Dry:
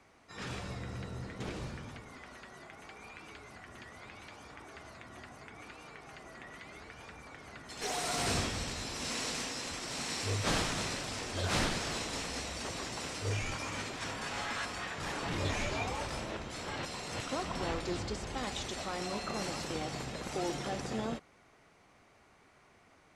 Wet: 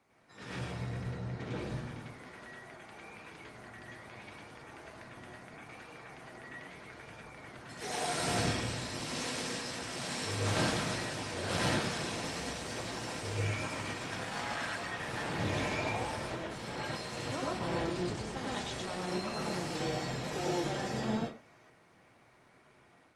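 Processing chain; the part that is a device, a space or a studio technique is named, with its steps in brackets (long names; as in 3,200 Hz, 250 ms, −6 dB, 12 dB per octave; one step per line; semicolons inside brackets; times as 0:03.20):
0:01.07–0:01.59: Bessel low-pass filter 5,700 Hz, order 2
far-field microphone of a smart speaker (convolution reverb RT60 0.35 s, pre-delay 95 ms, DRR −4 dB; high-pass filter 99 Hz 12 dB per octave; automatic gain control gain up to 4.5 dB; level −7.5 dB; Opus 32 kbit/s 48,000 Hz)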